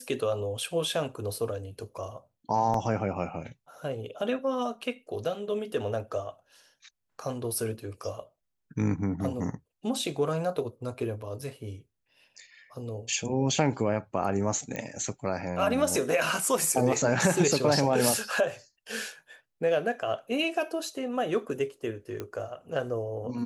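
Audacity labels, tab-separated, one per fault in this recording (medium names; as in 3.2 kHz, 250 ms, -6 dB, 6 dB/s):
2.740000	2.740000	dropout 2.8 ms
14.760000	14.760000	pop -19 dBFS
22.200000	22.200000	pop -21 dBFS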